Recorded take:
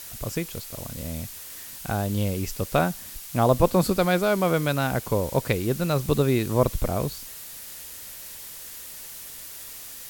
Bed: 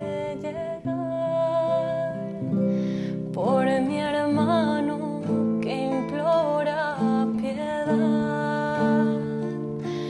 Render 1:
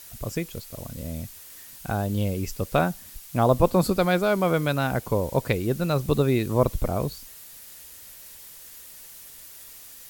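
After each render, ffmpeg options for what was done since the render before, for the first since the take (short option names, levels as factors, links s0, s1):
-af "afftdn=nr=6:nf=-40"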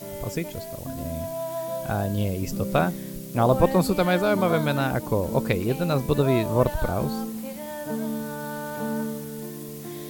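-filter_complex "[1:a]volume=0.422[s0];[0:a][s0]amix=inputs=2:normalize=0"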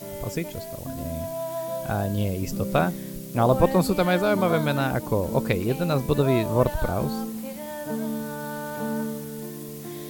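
-af anull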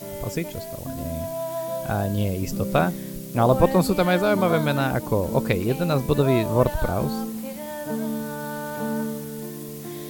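-af "volume=1.19"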